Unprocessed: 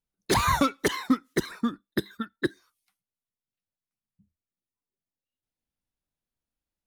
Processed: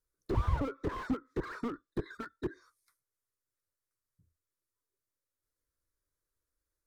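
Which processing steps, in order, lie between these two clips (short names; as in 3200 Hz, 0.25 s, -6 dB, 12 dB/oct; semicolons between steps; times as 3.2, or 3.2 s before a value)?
treble ducked by the level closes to 1000 Hz, closed at -21 dBFS; fixed phaser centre 770 Hz, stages 6; slew limiter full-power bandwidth 7.4 Hz; gain +4.5 dB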